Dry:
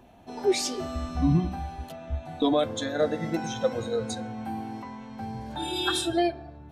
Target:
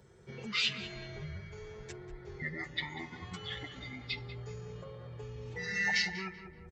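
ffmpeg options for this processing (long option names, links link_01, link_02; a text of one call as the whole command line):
ffmpeg -i in.wav -filter_complex "[0:a]highpass=frequency=91:width=0.5412,highpass=frequency=91:width=1.3066,highshelf=frequency=5900:gain=6,asetrate=24046,aresample=44100,atempo=1.83401,acrossover=split=1200[link_01][link_02];[link_01]acompressor=threshold=-38dB:ratio=6[link_03];[link_02]aecho=1:1:6.7:0.93[link_04];[link_03][link_04]amix=inputs=2:normalize=0,equalizer=frequency=280:width=5.9:gain=-11.5,asplit=2[link_05][link_06];[link_06]adelay=191,lowpass=frequency=2100:poles=1,volume=-10dB,asplit=2[link_07][link_08];[link_08]adelay=191,lowpass=frequency=2100:poles=1,volume=0.46,asplit=2[link_09][link_10];[link_10]adelay=191,lowpass=frequency=2100:poles=1,volume=0.46,asplit=2[link_11][link_12];[link_12]adelay=191,lowpass=frequency=2100:poles=1,volume=0.46,asplit=2[link_13][link_14];[link_14]adelay=191,lowpass=frequency=2100:poles=1,volume=0.46[link_15];[link_05][link_07][link_09][link_11][link_13][link_15]amix=inputs=6:normalize=0,volume=-4dB" out.wav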